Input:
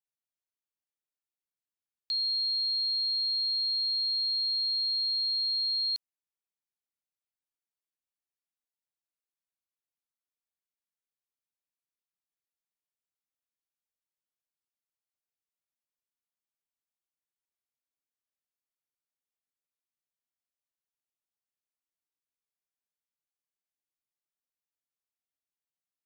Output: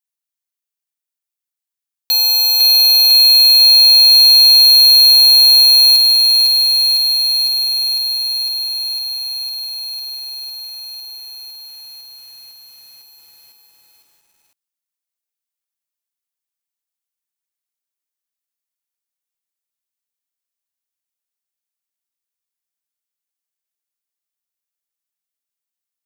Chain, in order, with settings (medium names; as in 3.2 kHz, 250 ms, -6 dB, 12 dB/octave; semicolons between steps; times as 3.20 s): square wave that keeps the level; tilt EQ +2.5 dB/octave; waveshaping leveller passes 3; saturation -16.5 dBFS, distortion -23 dB; bit-crushed delay 504 ms, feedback 80%, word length 9-bit, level -4.5 dB; trim +6 dB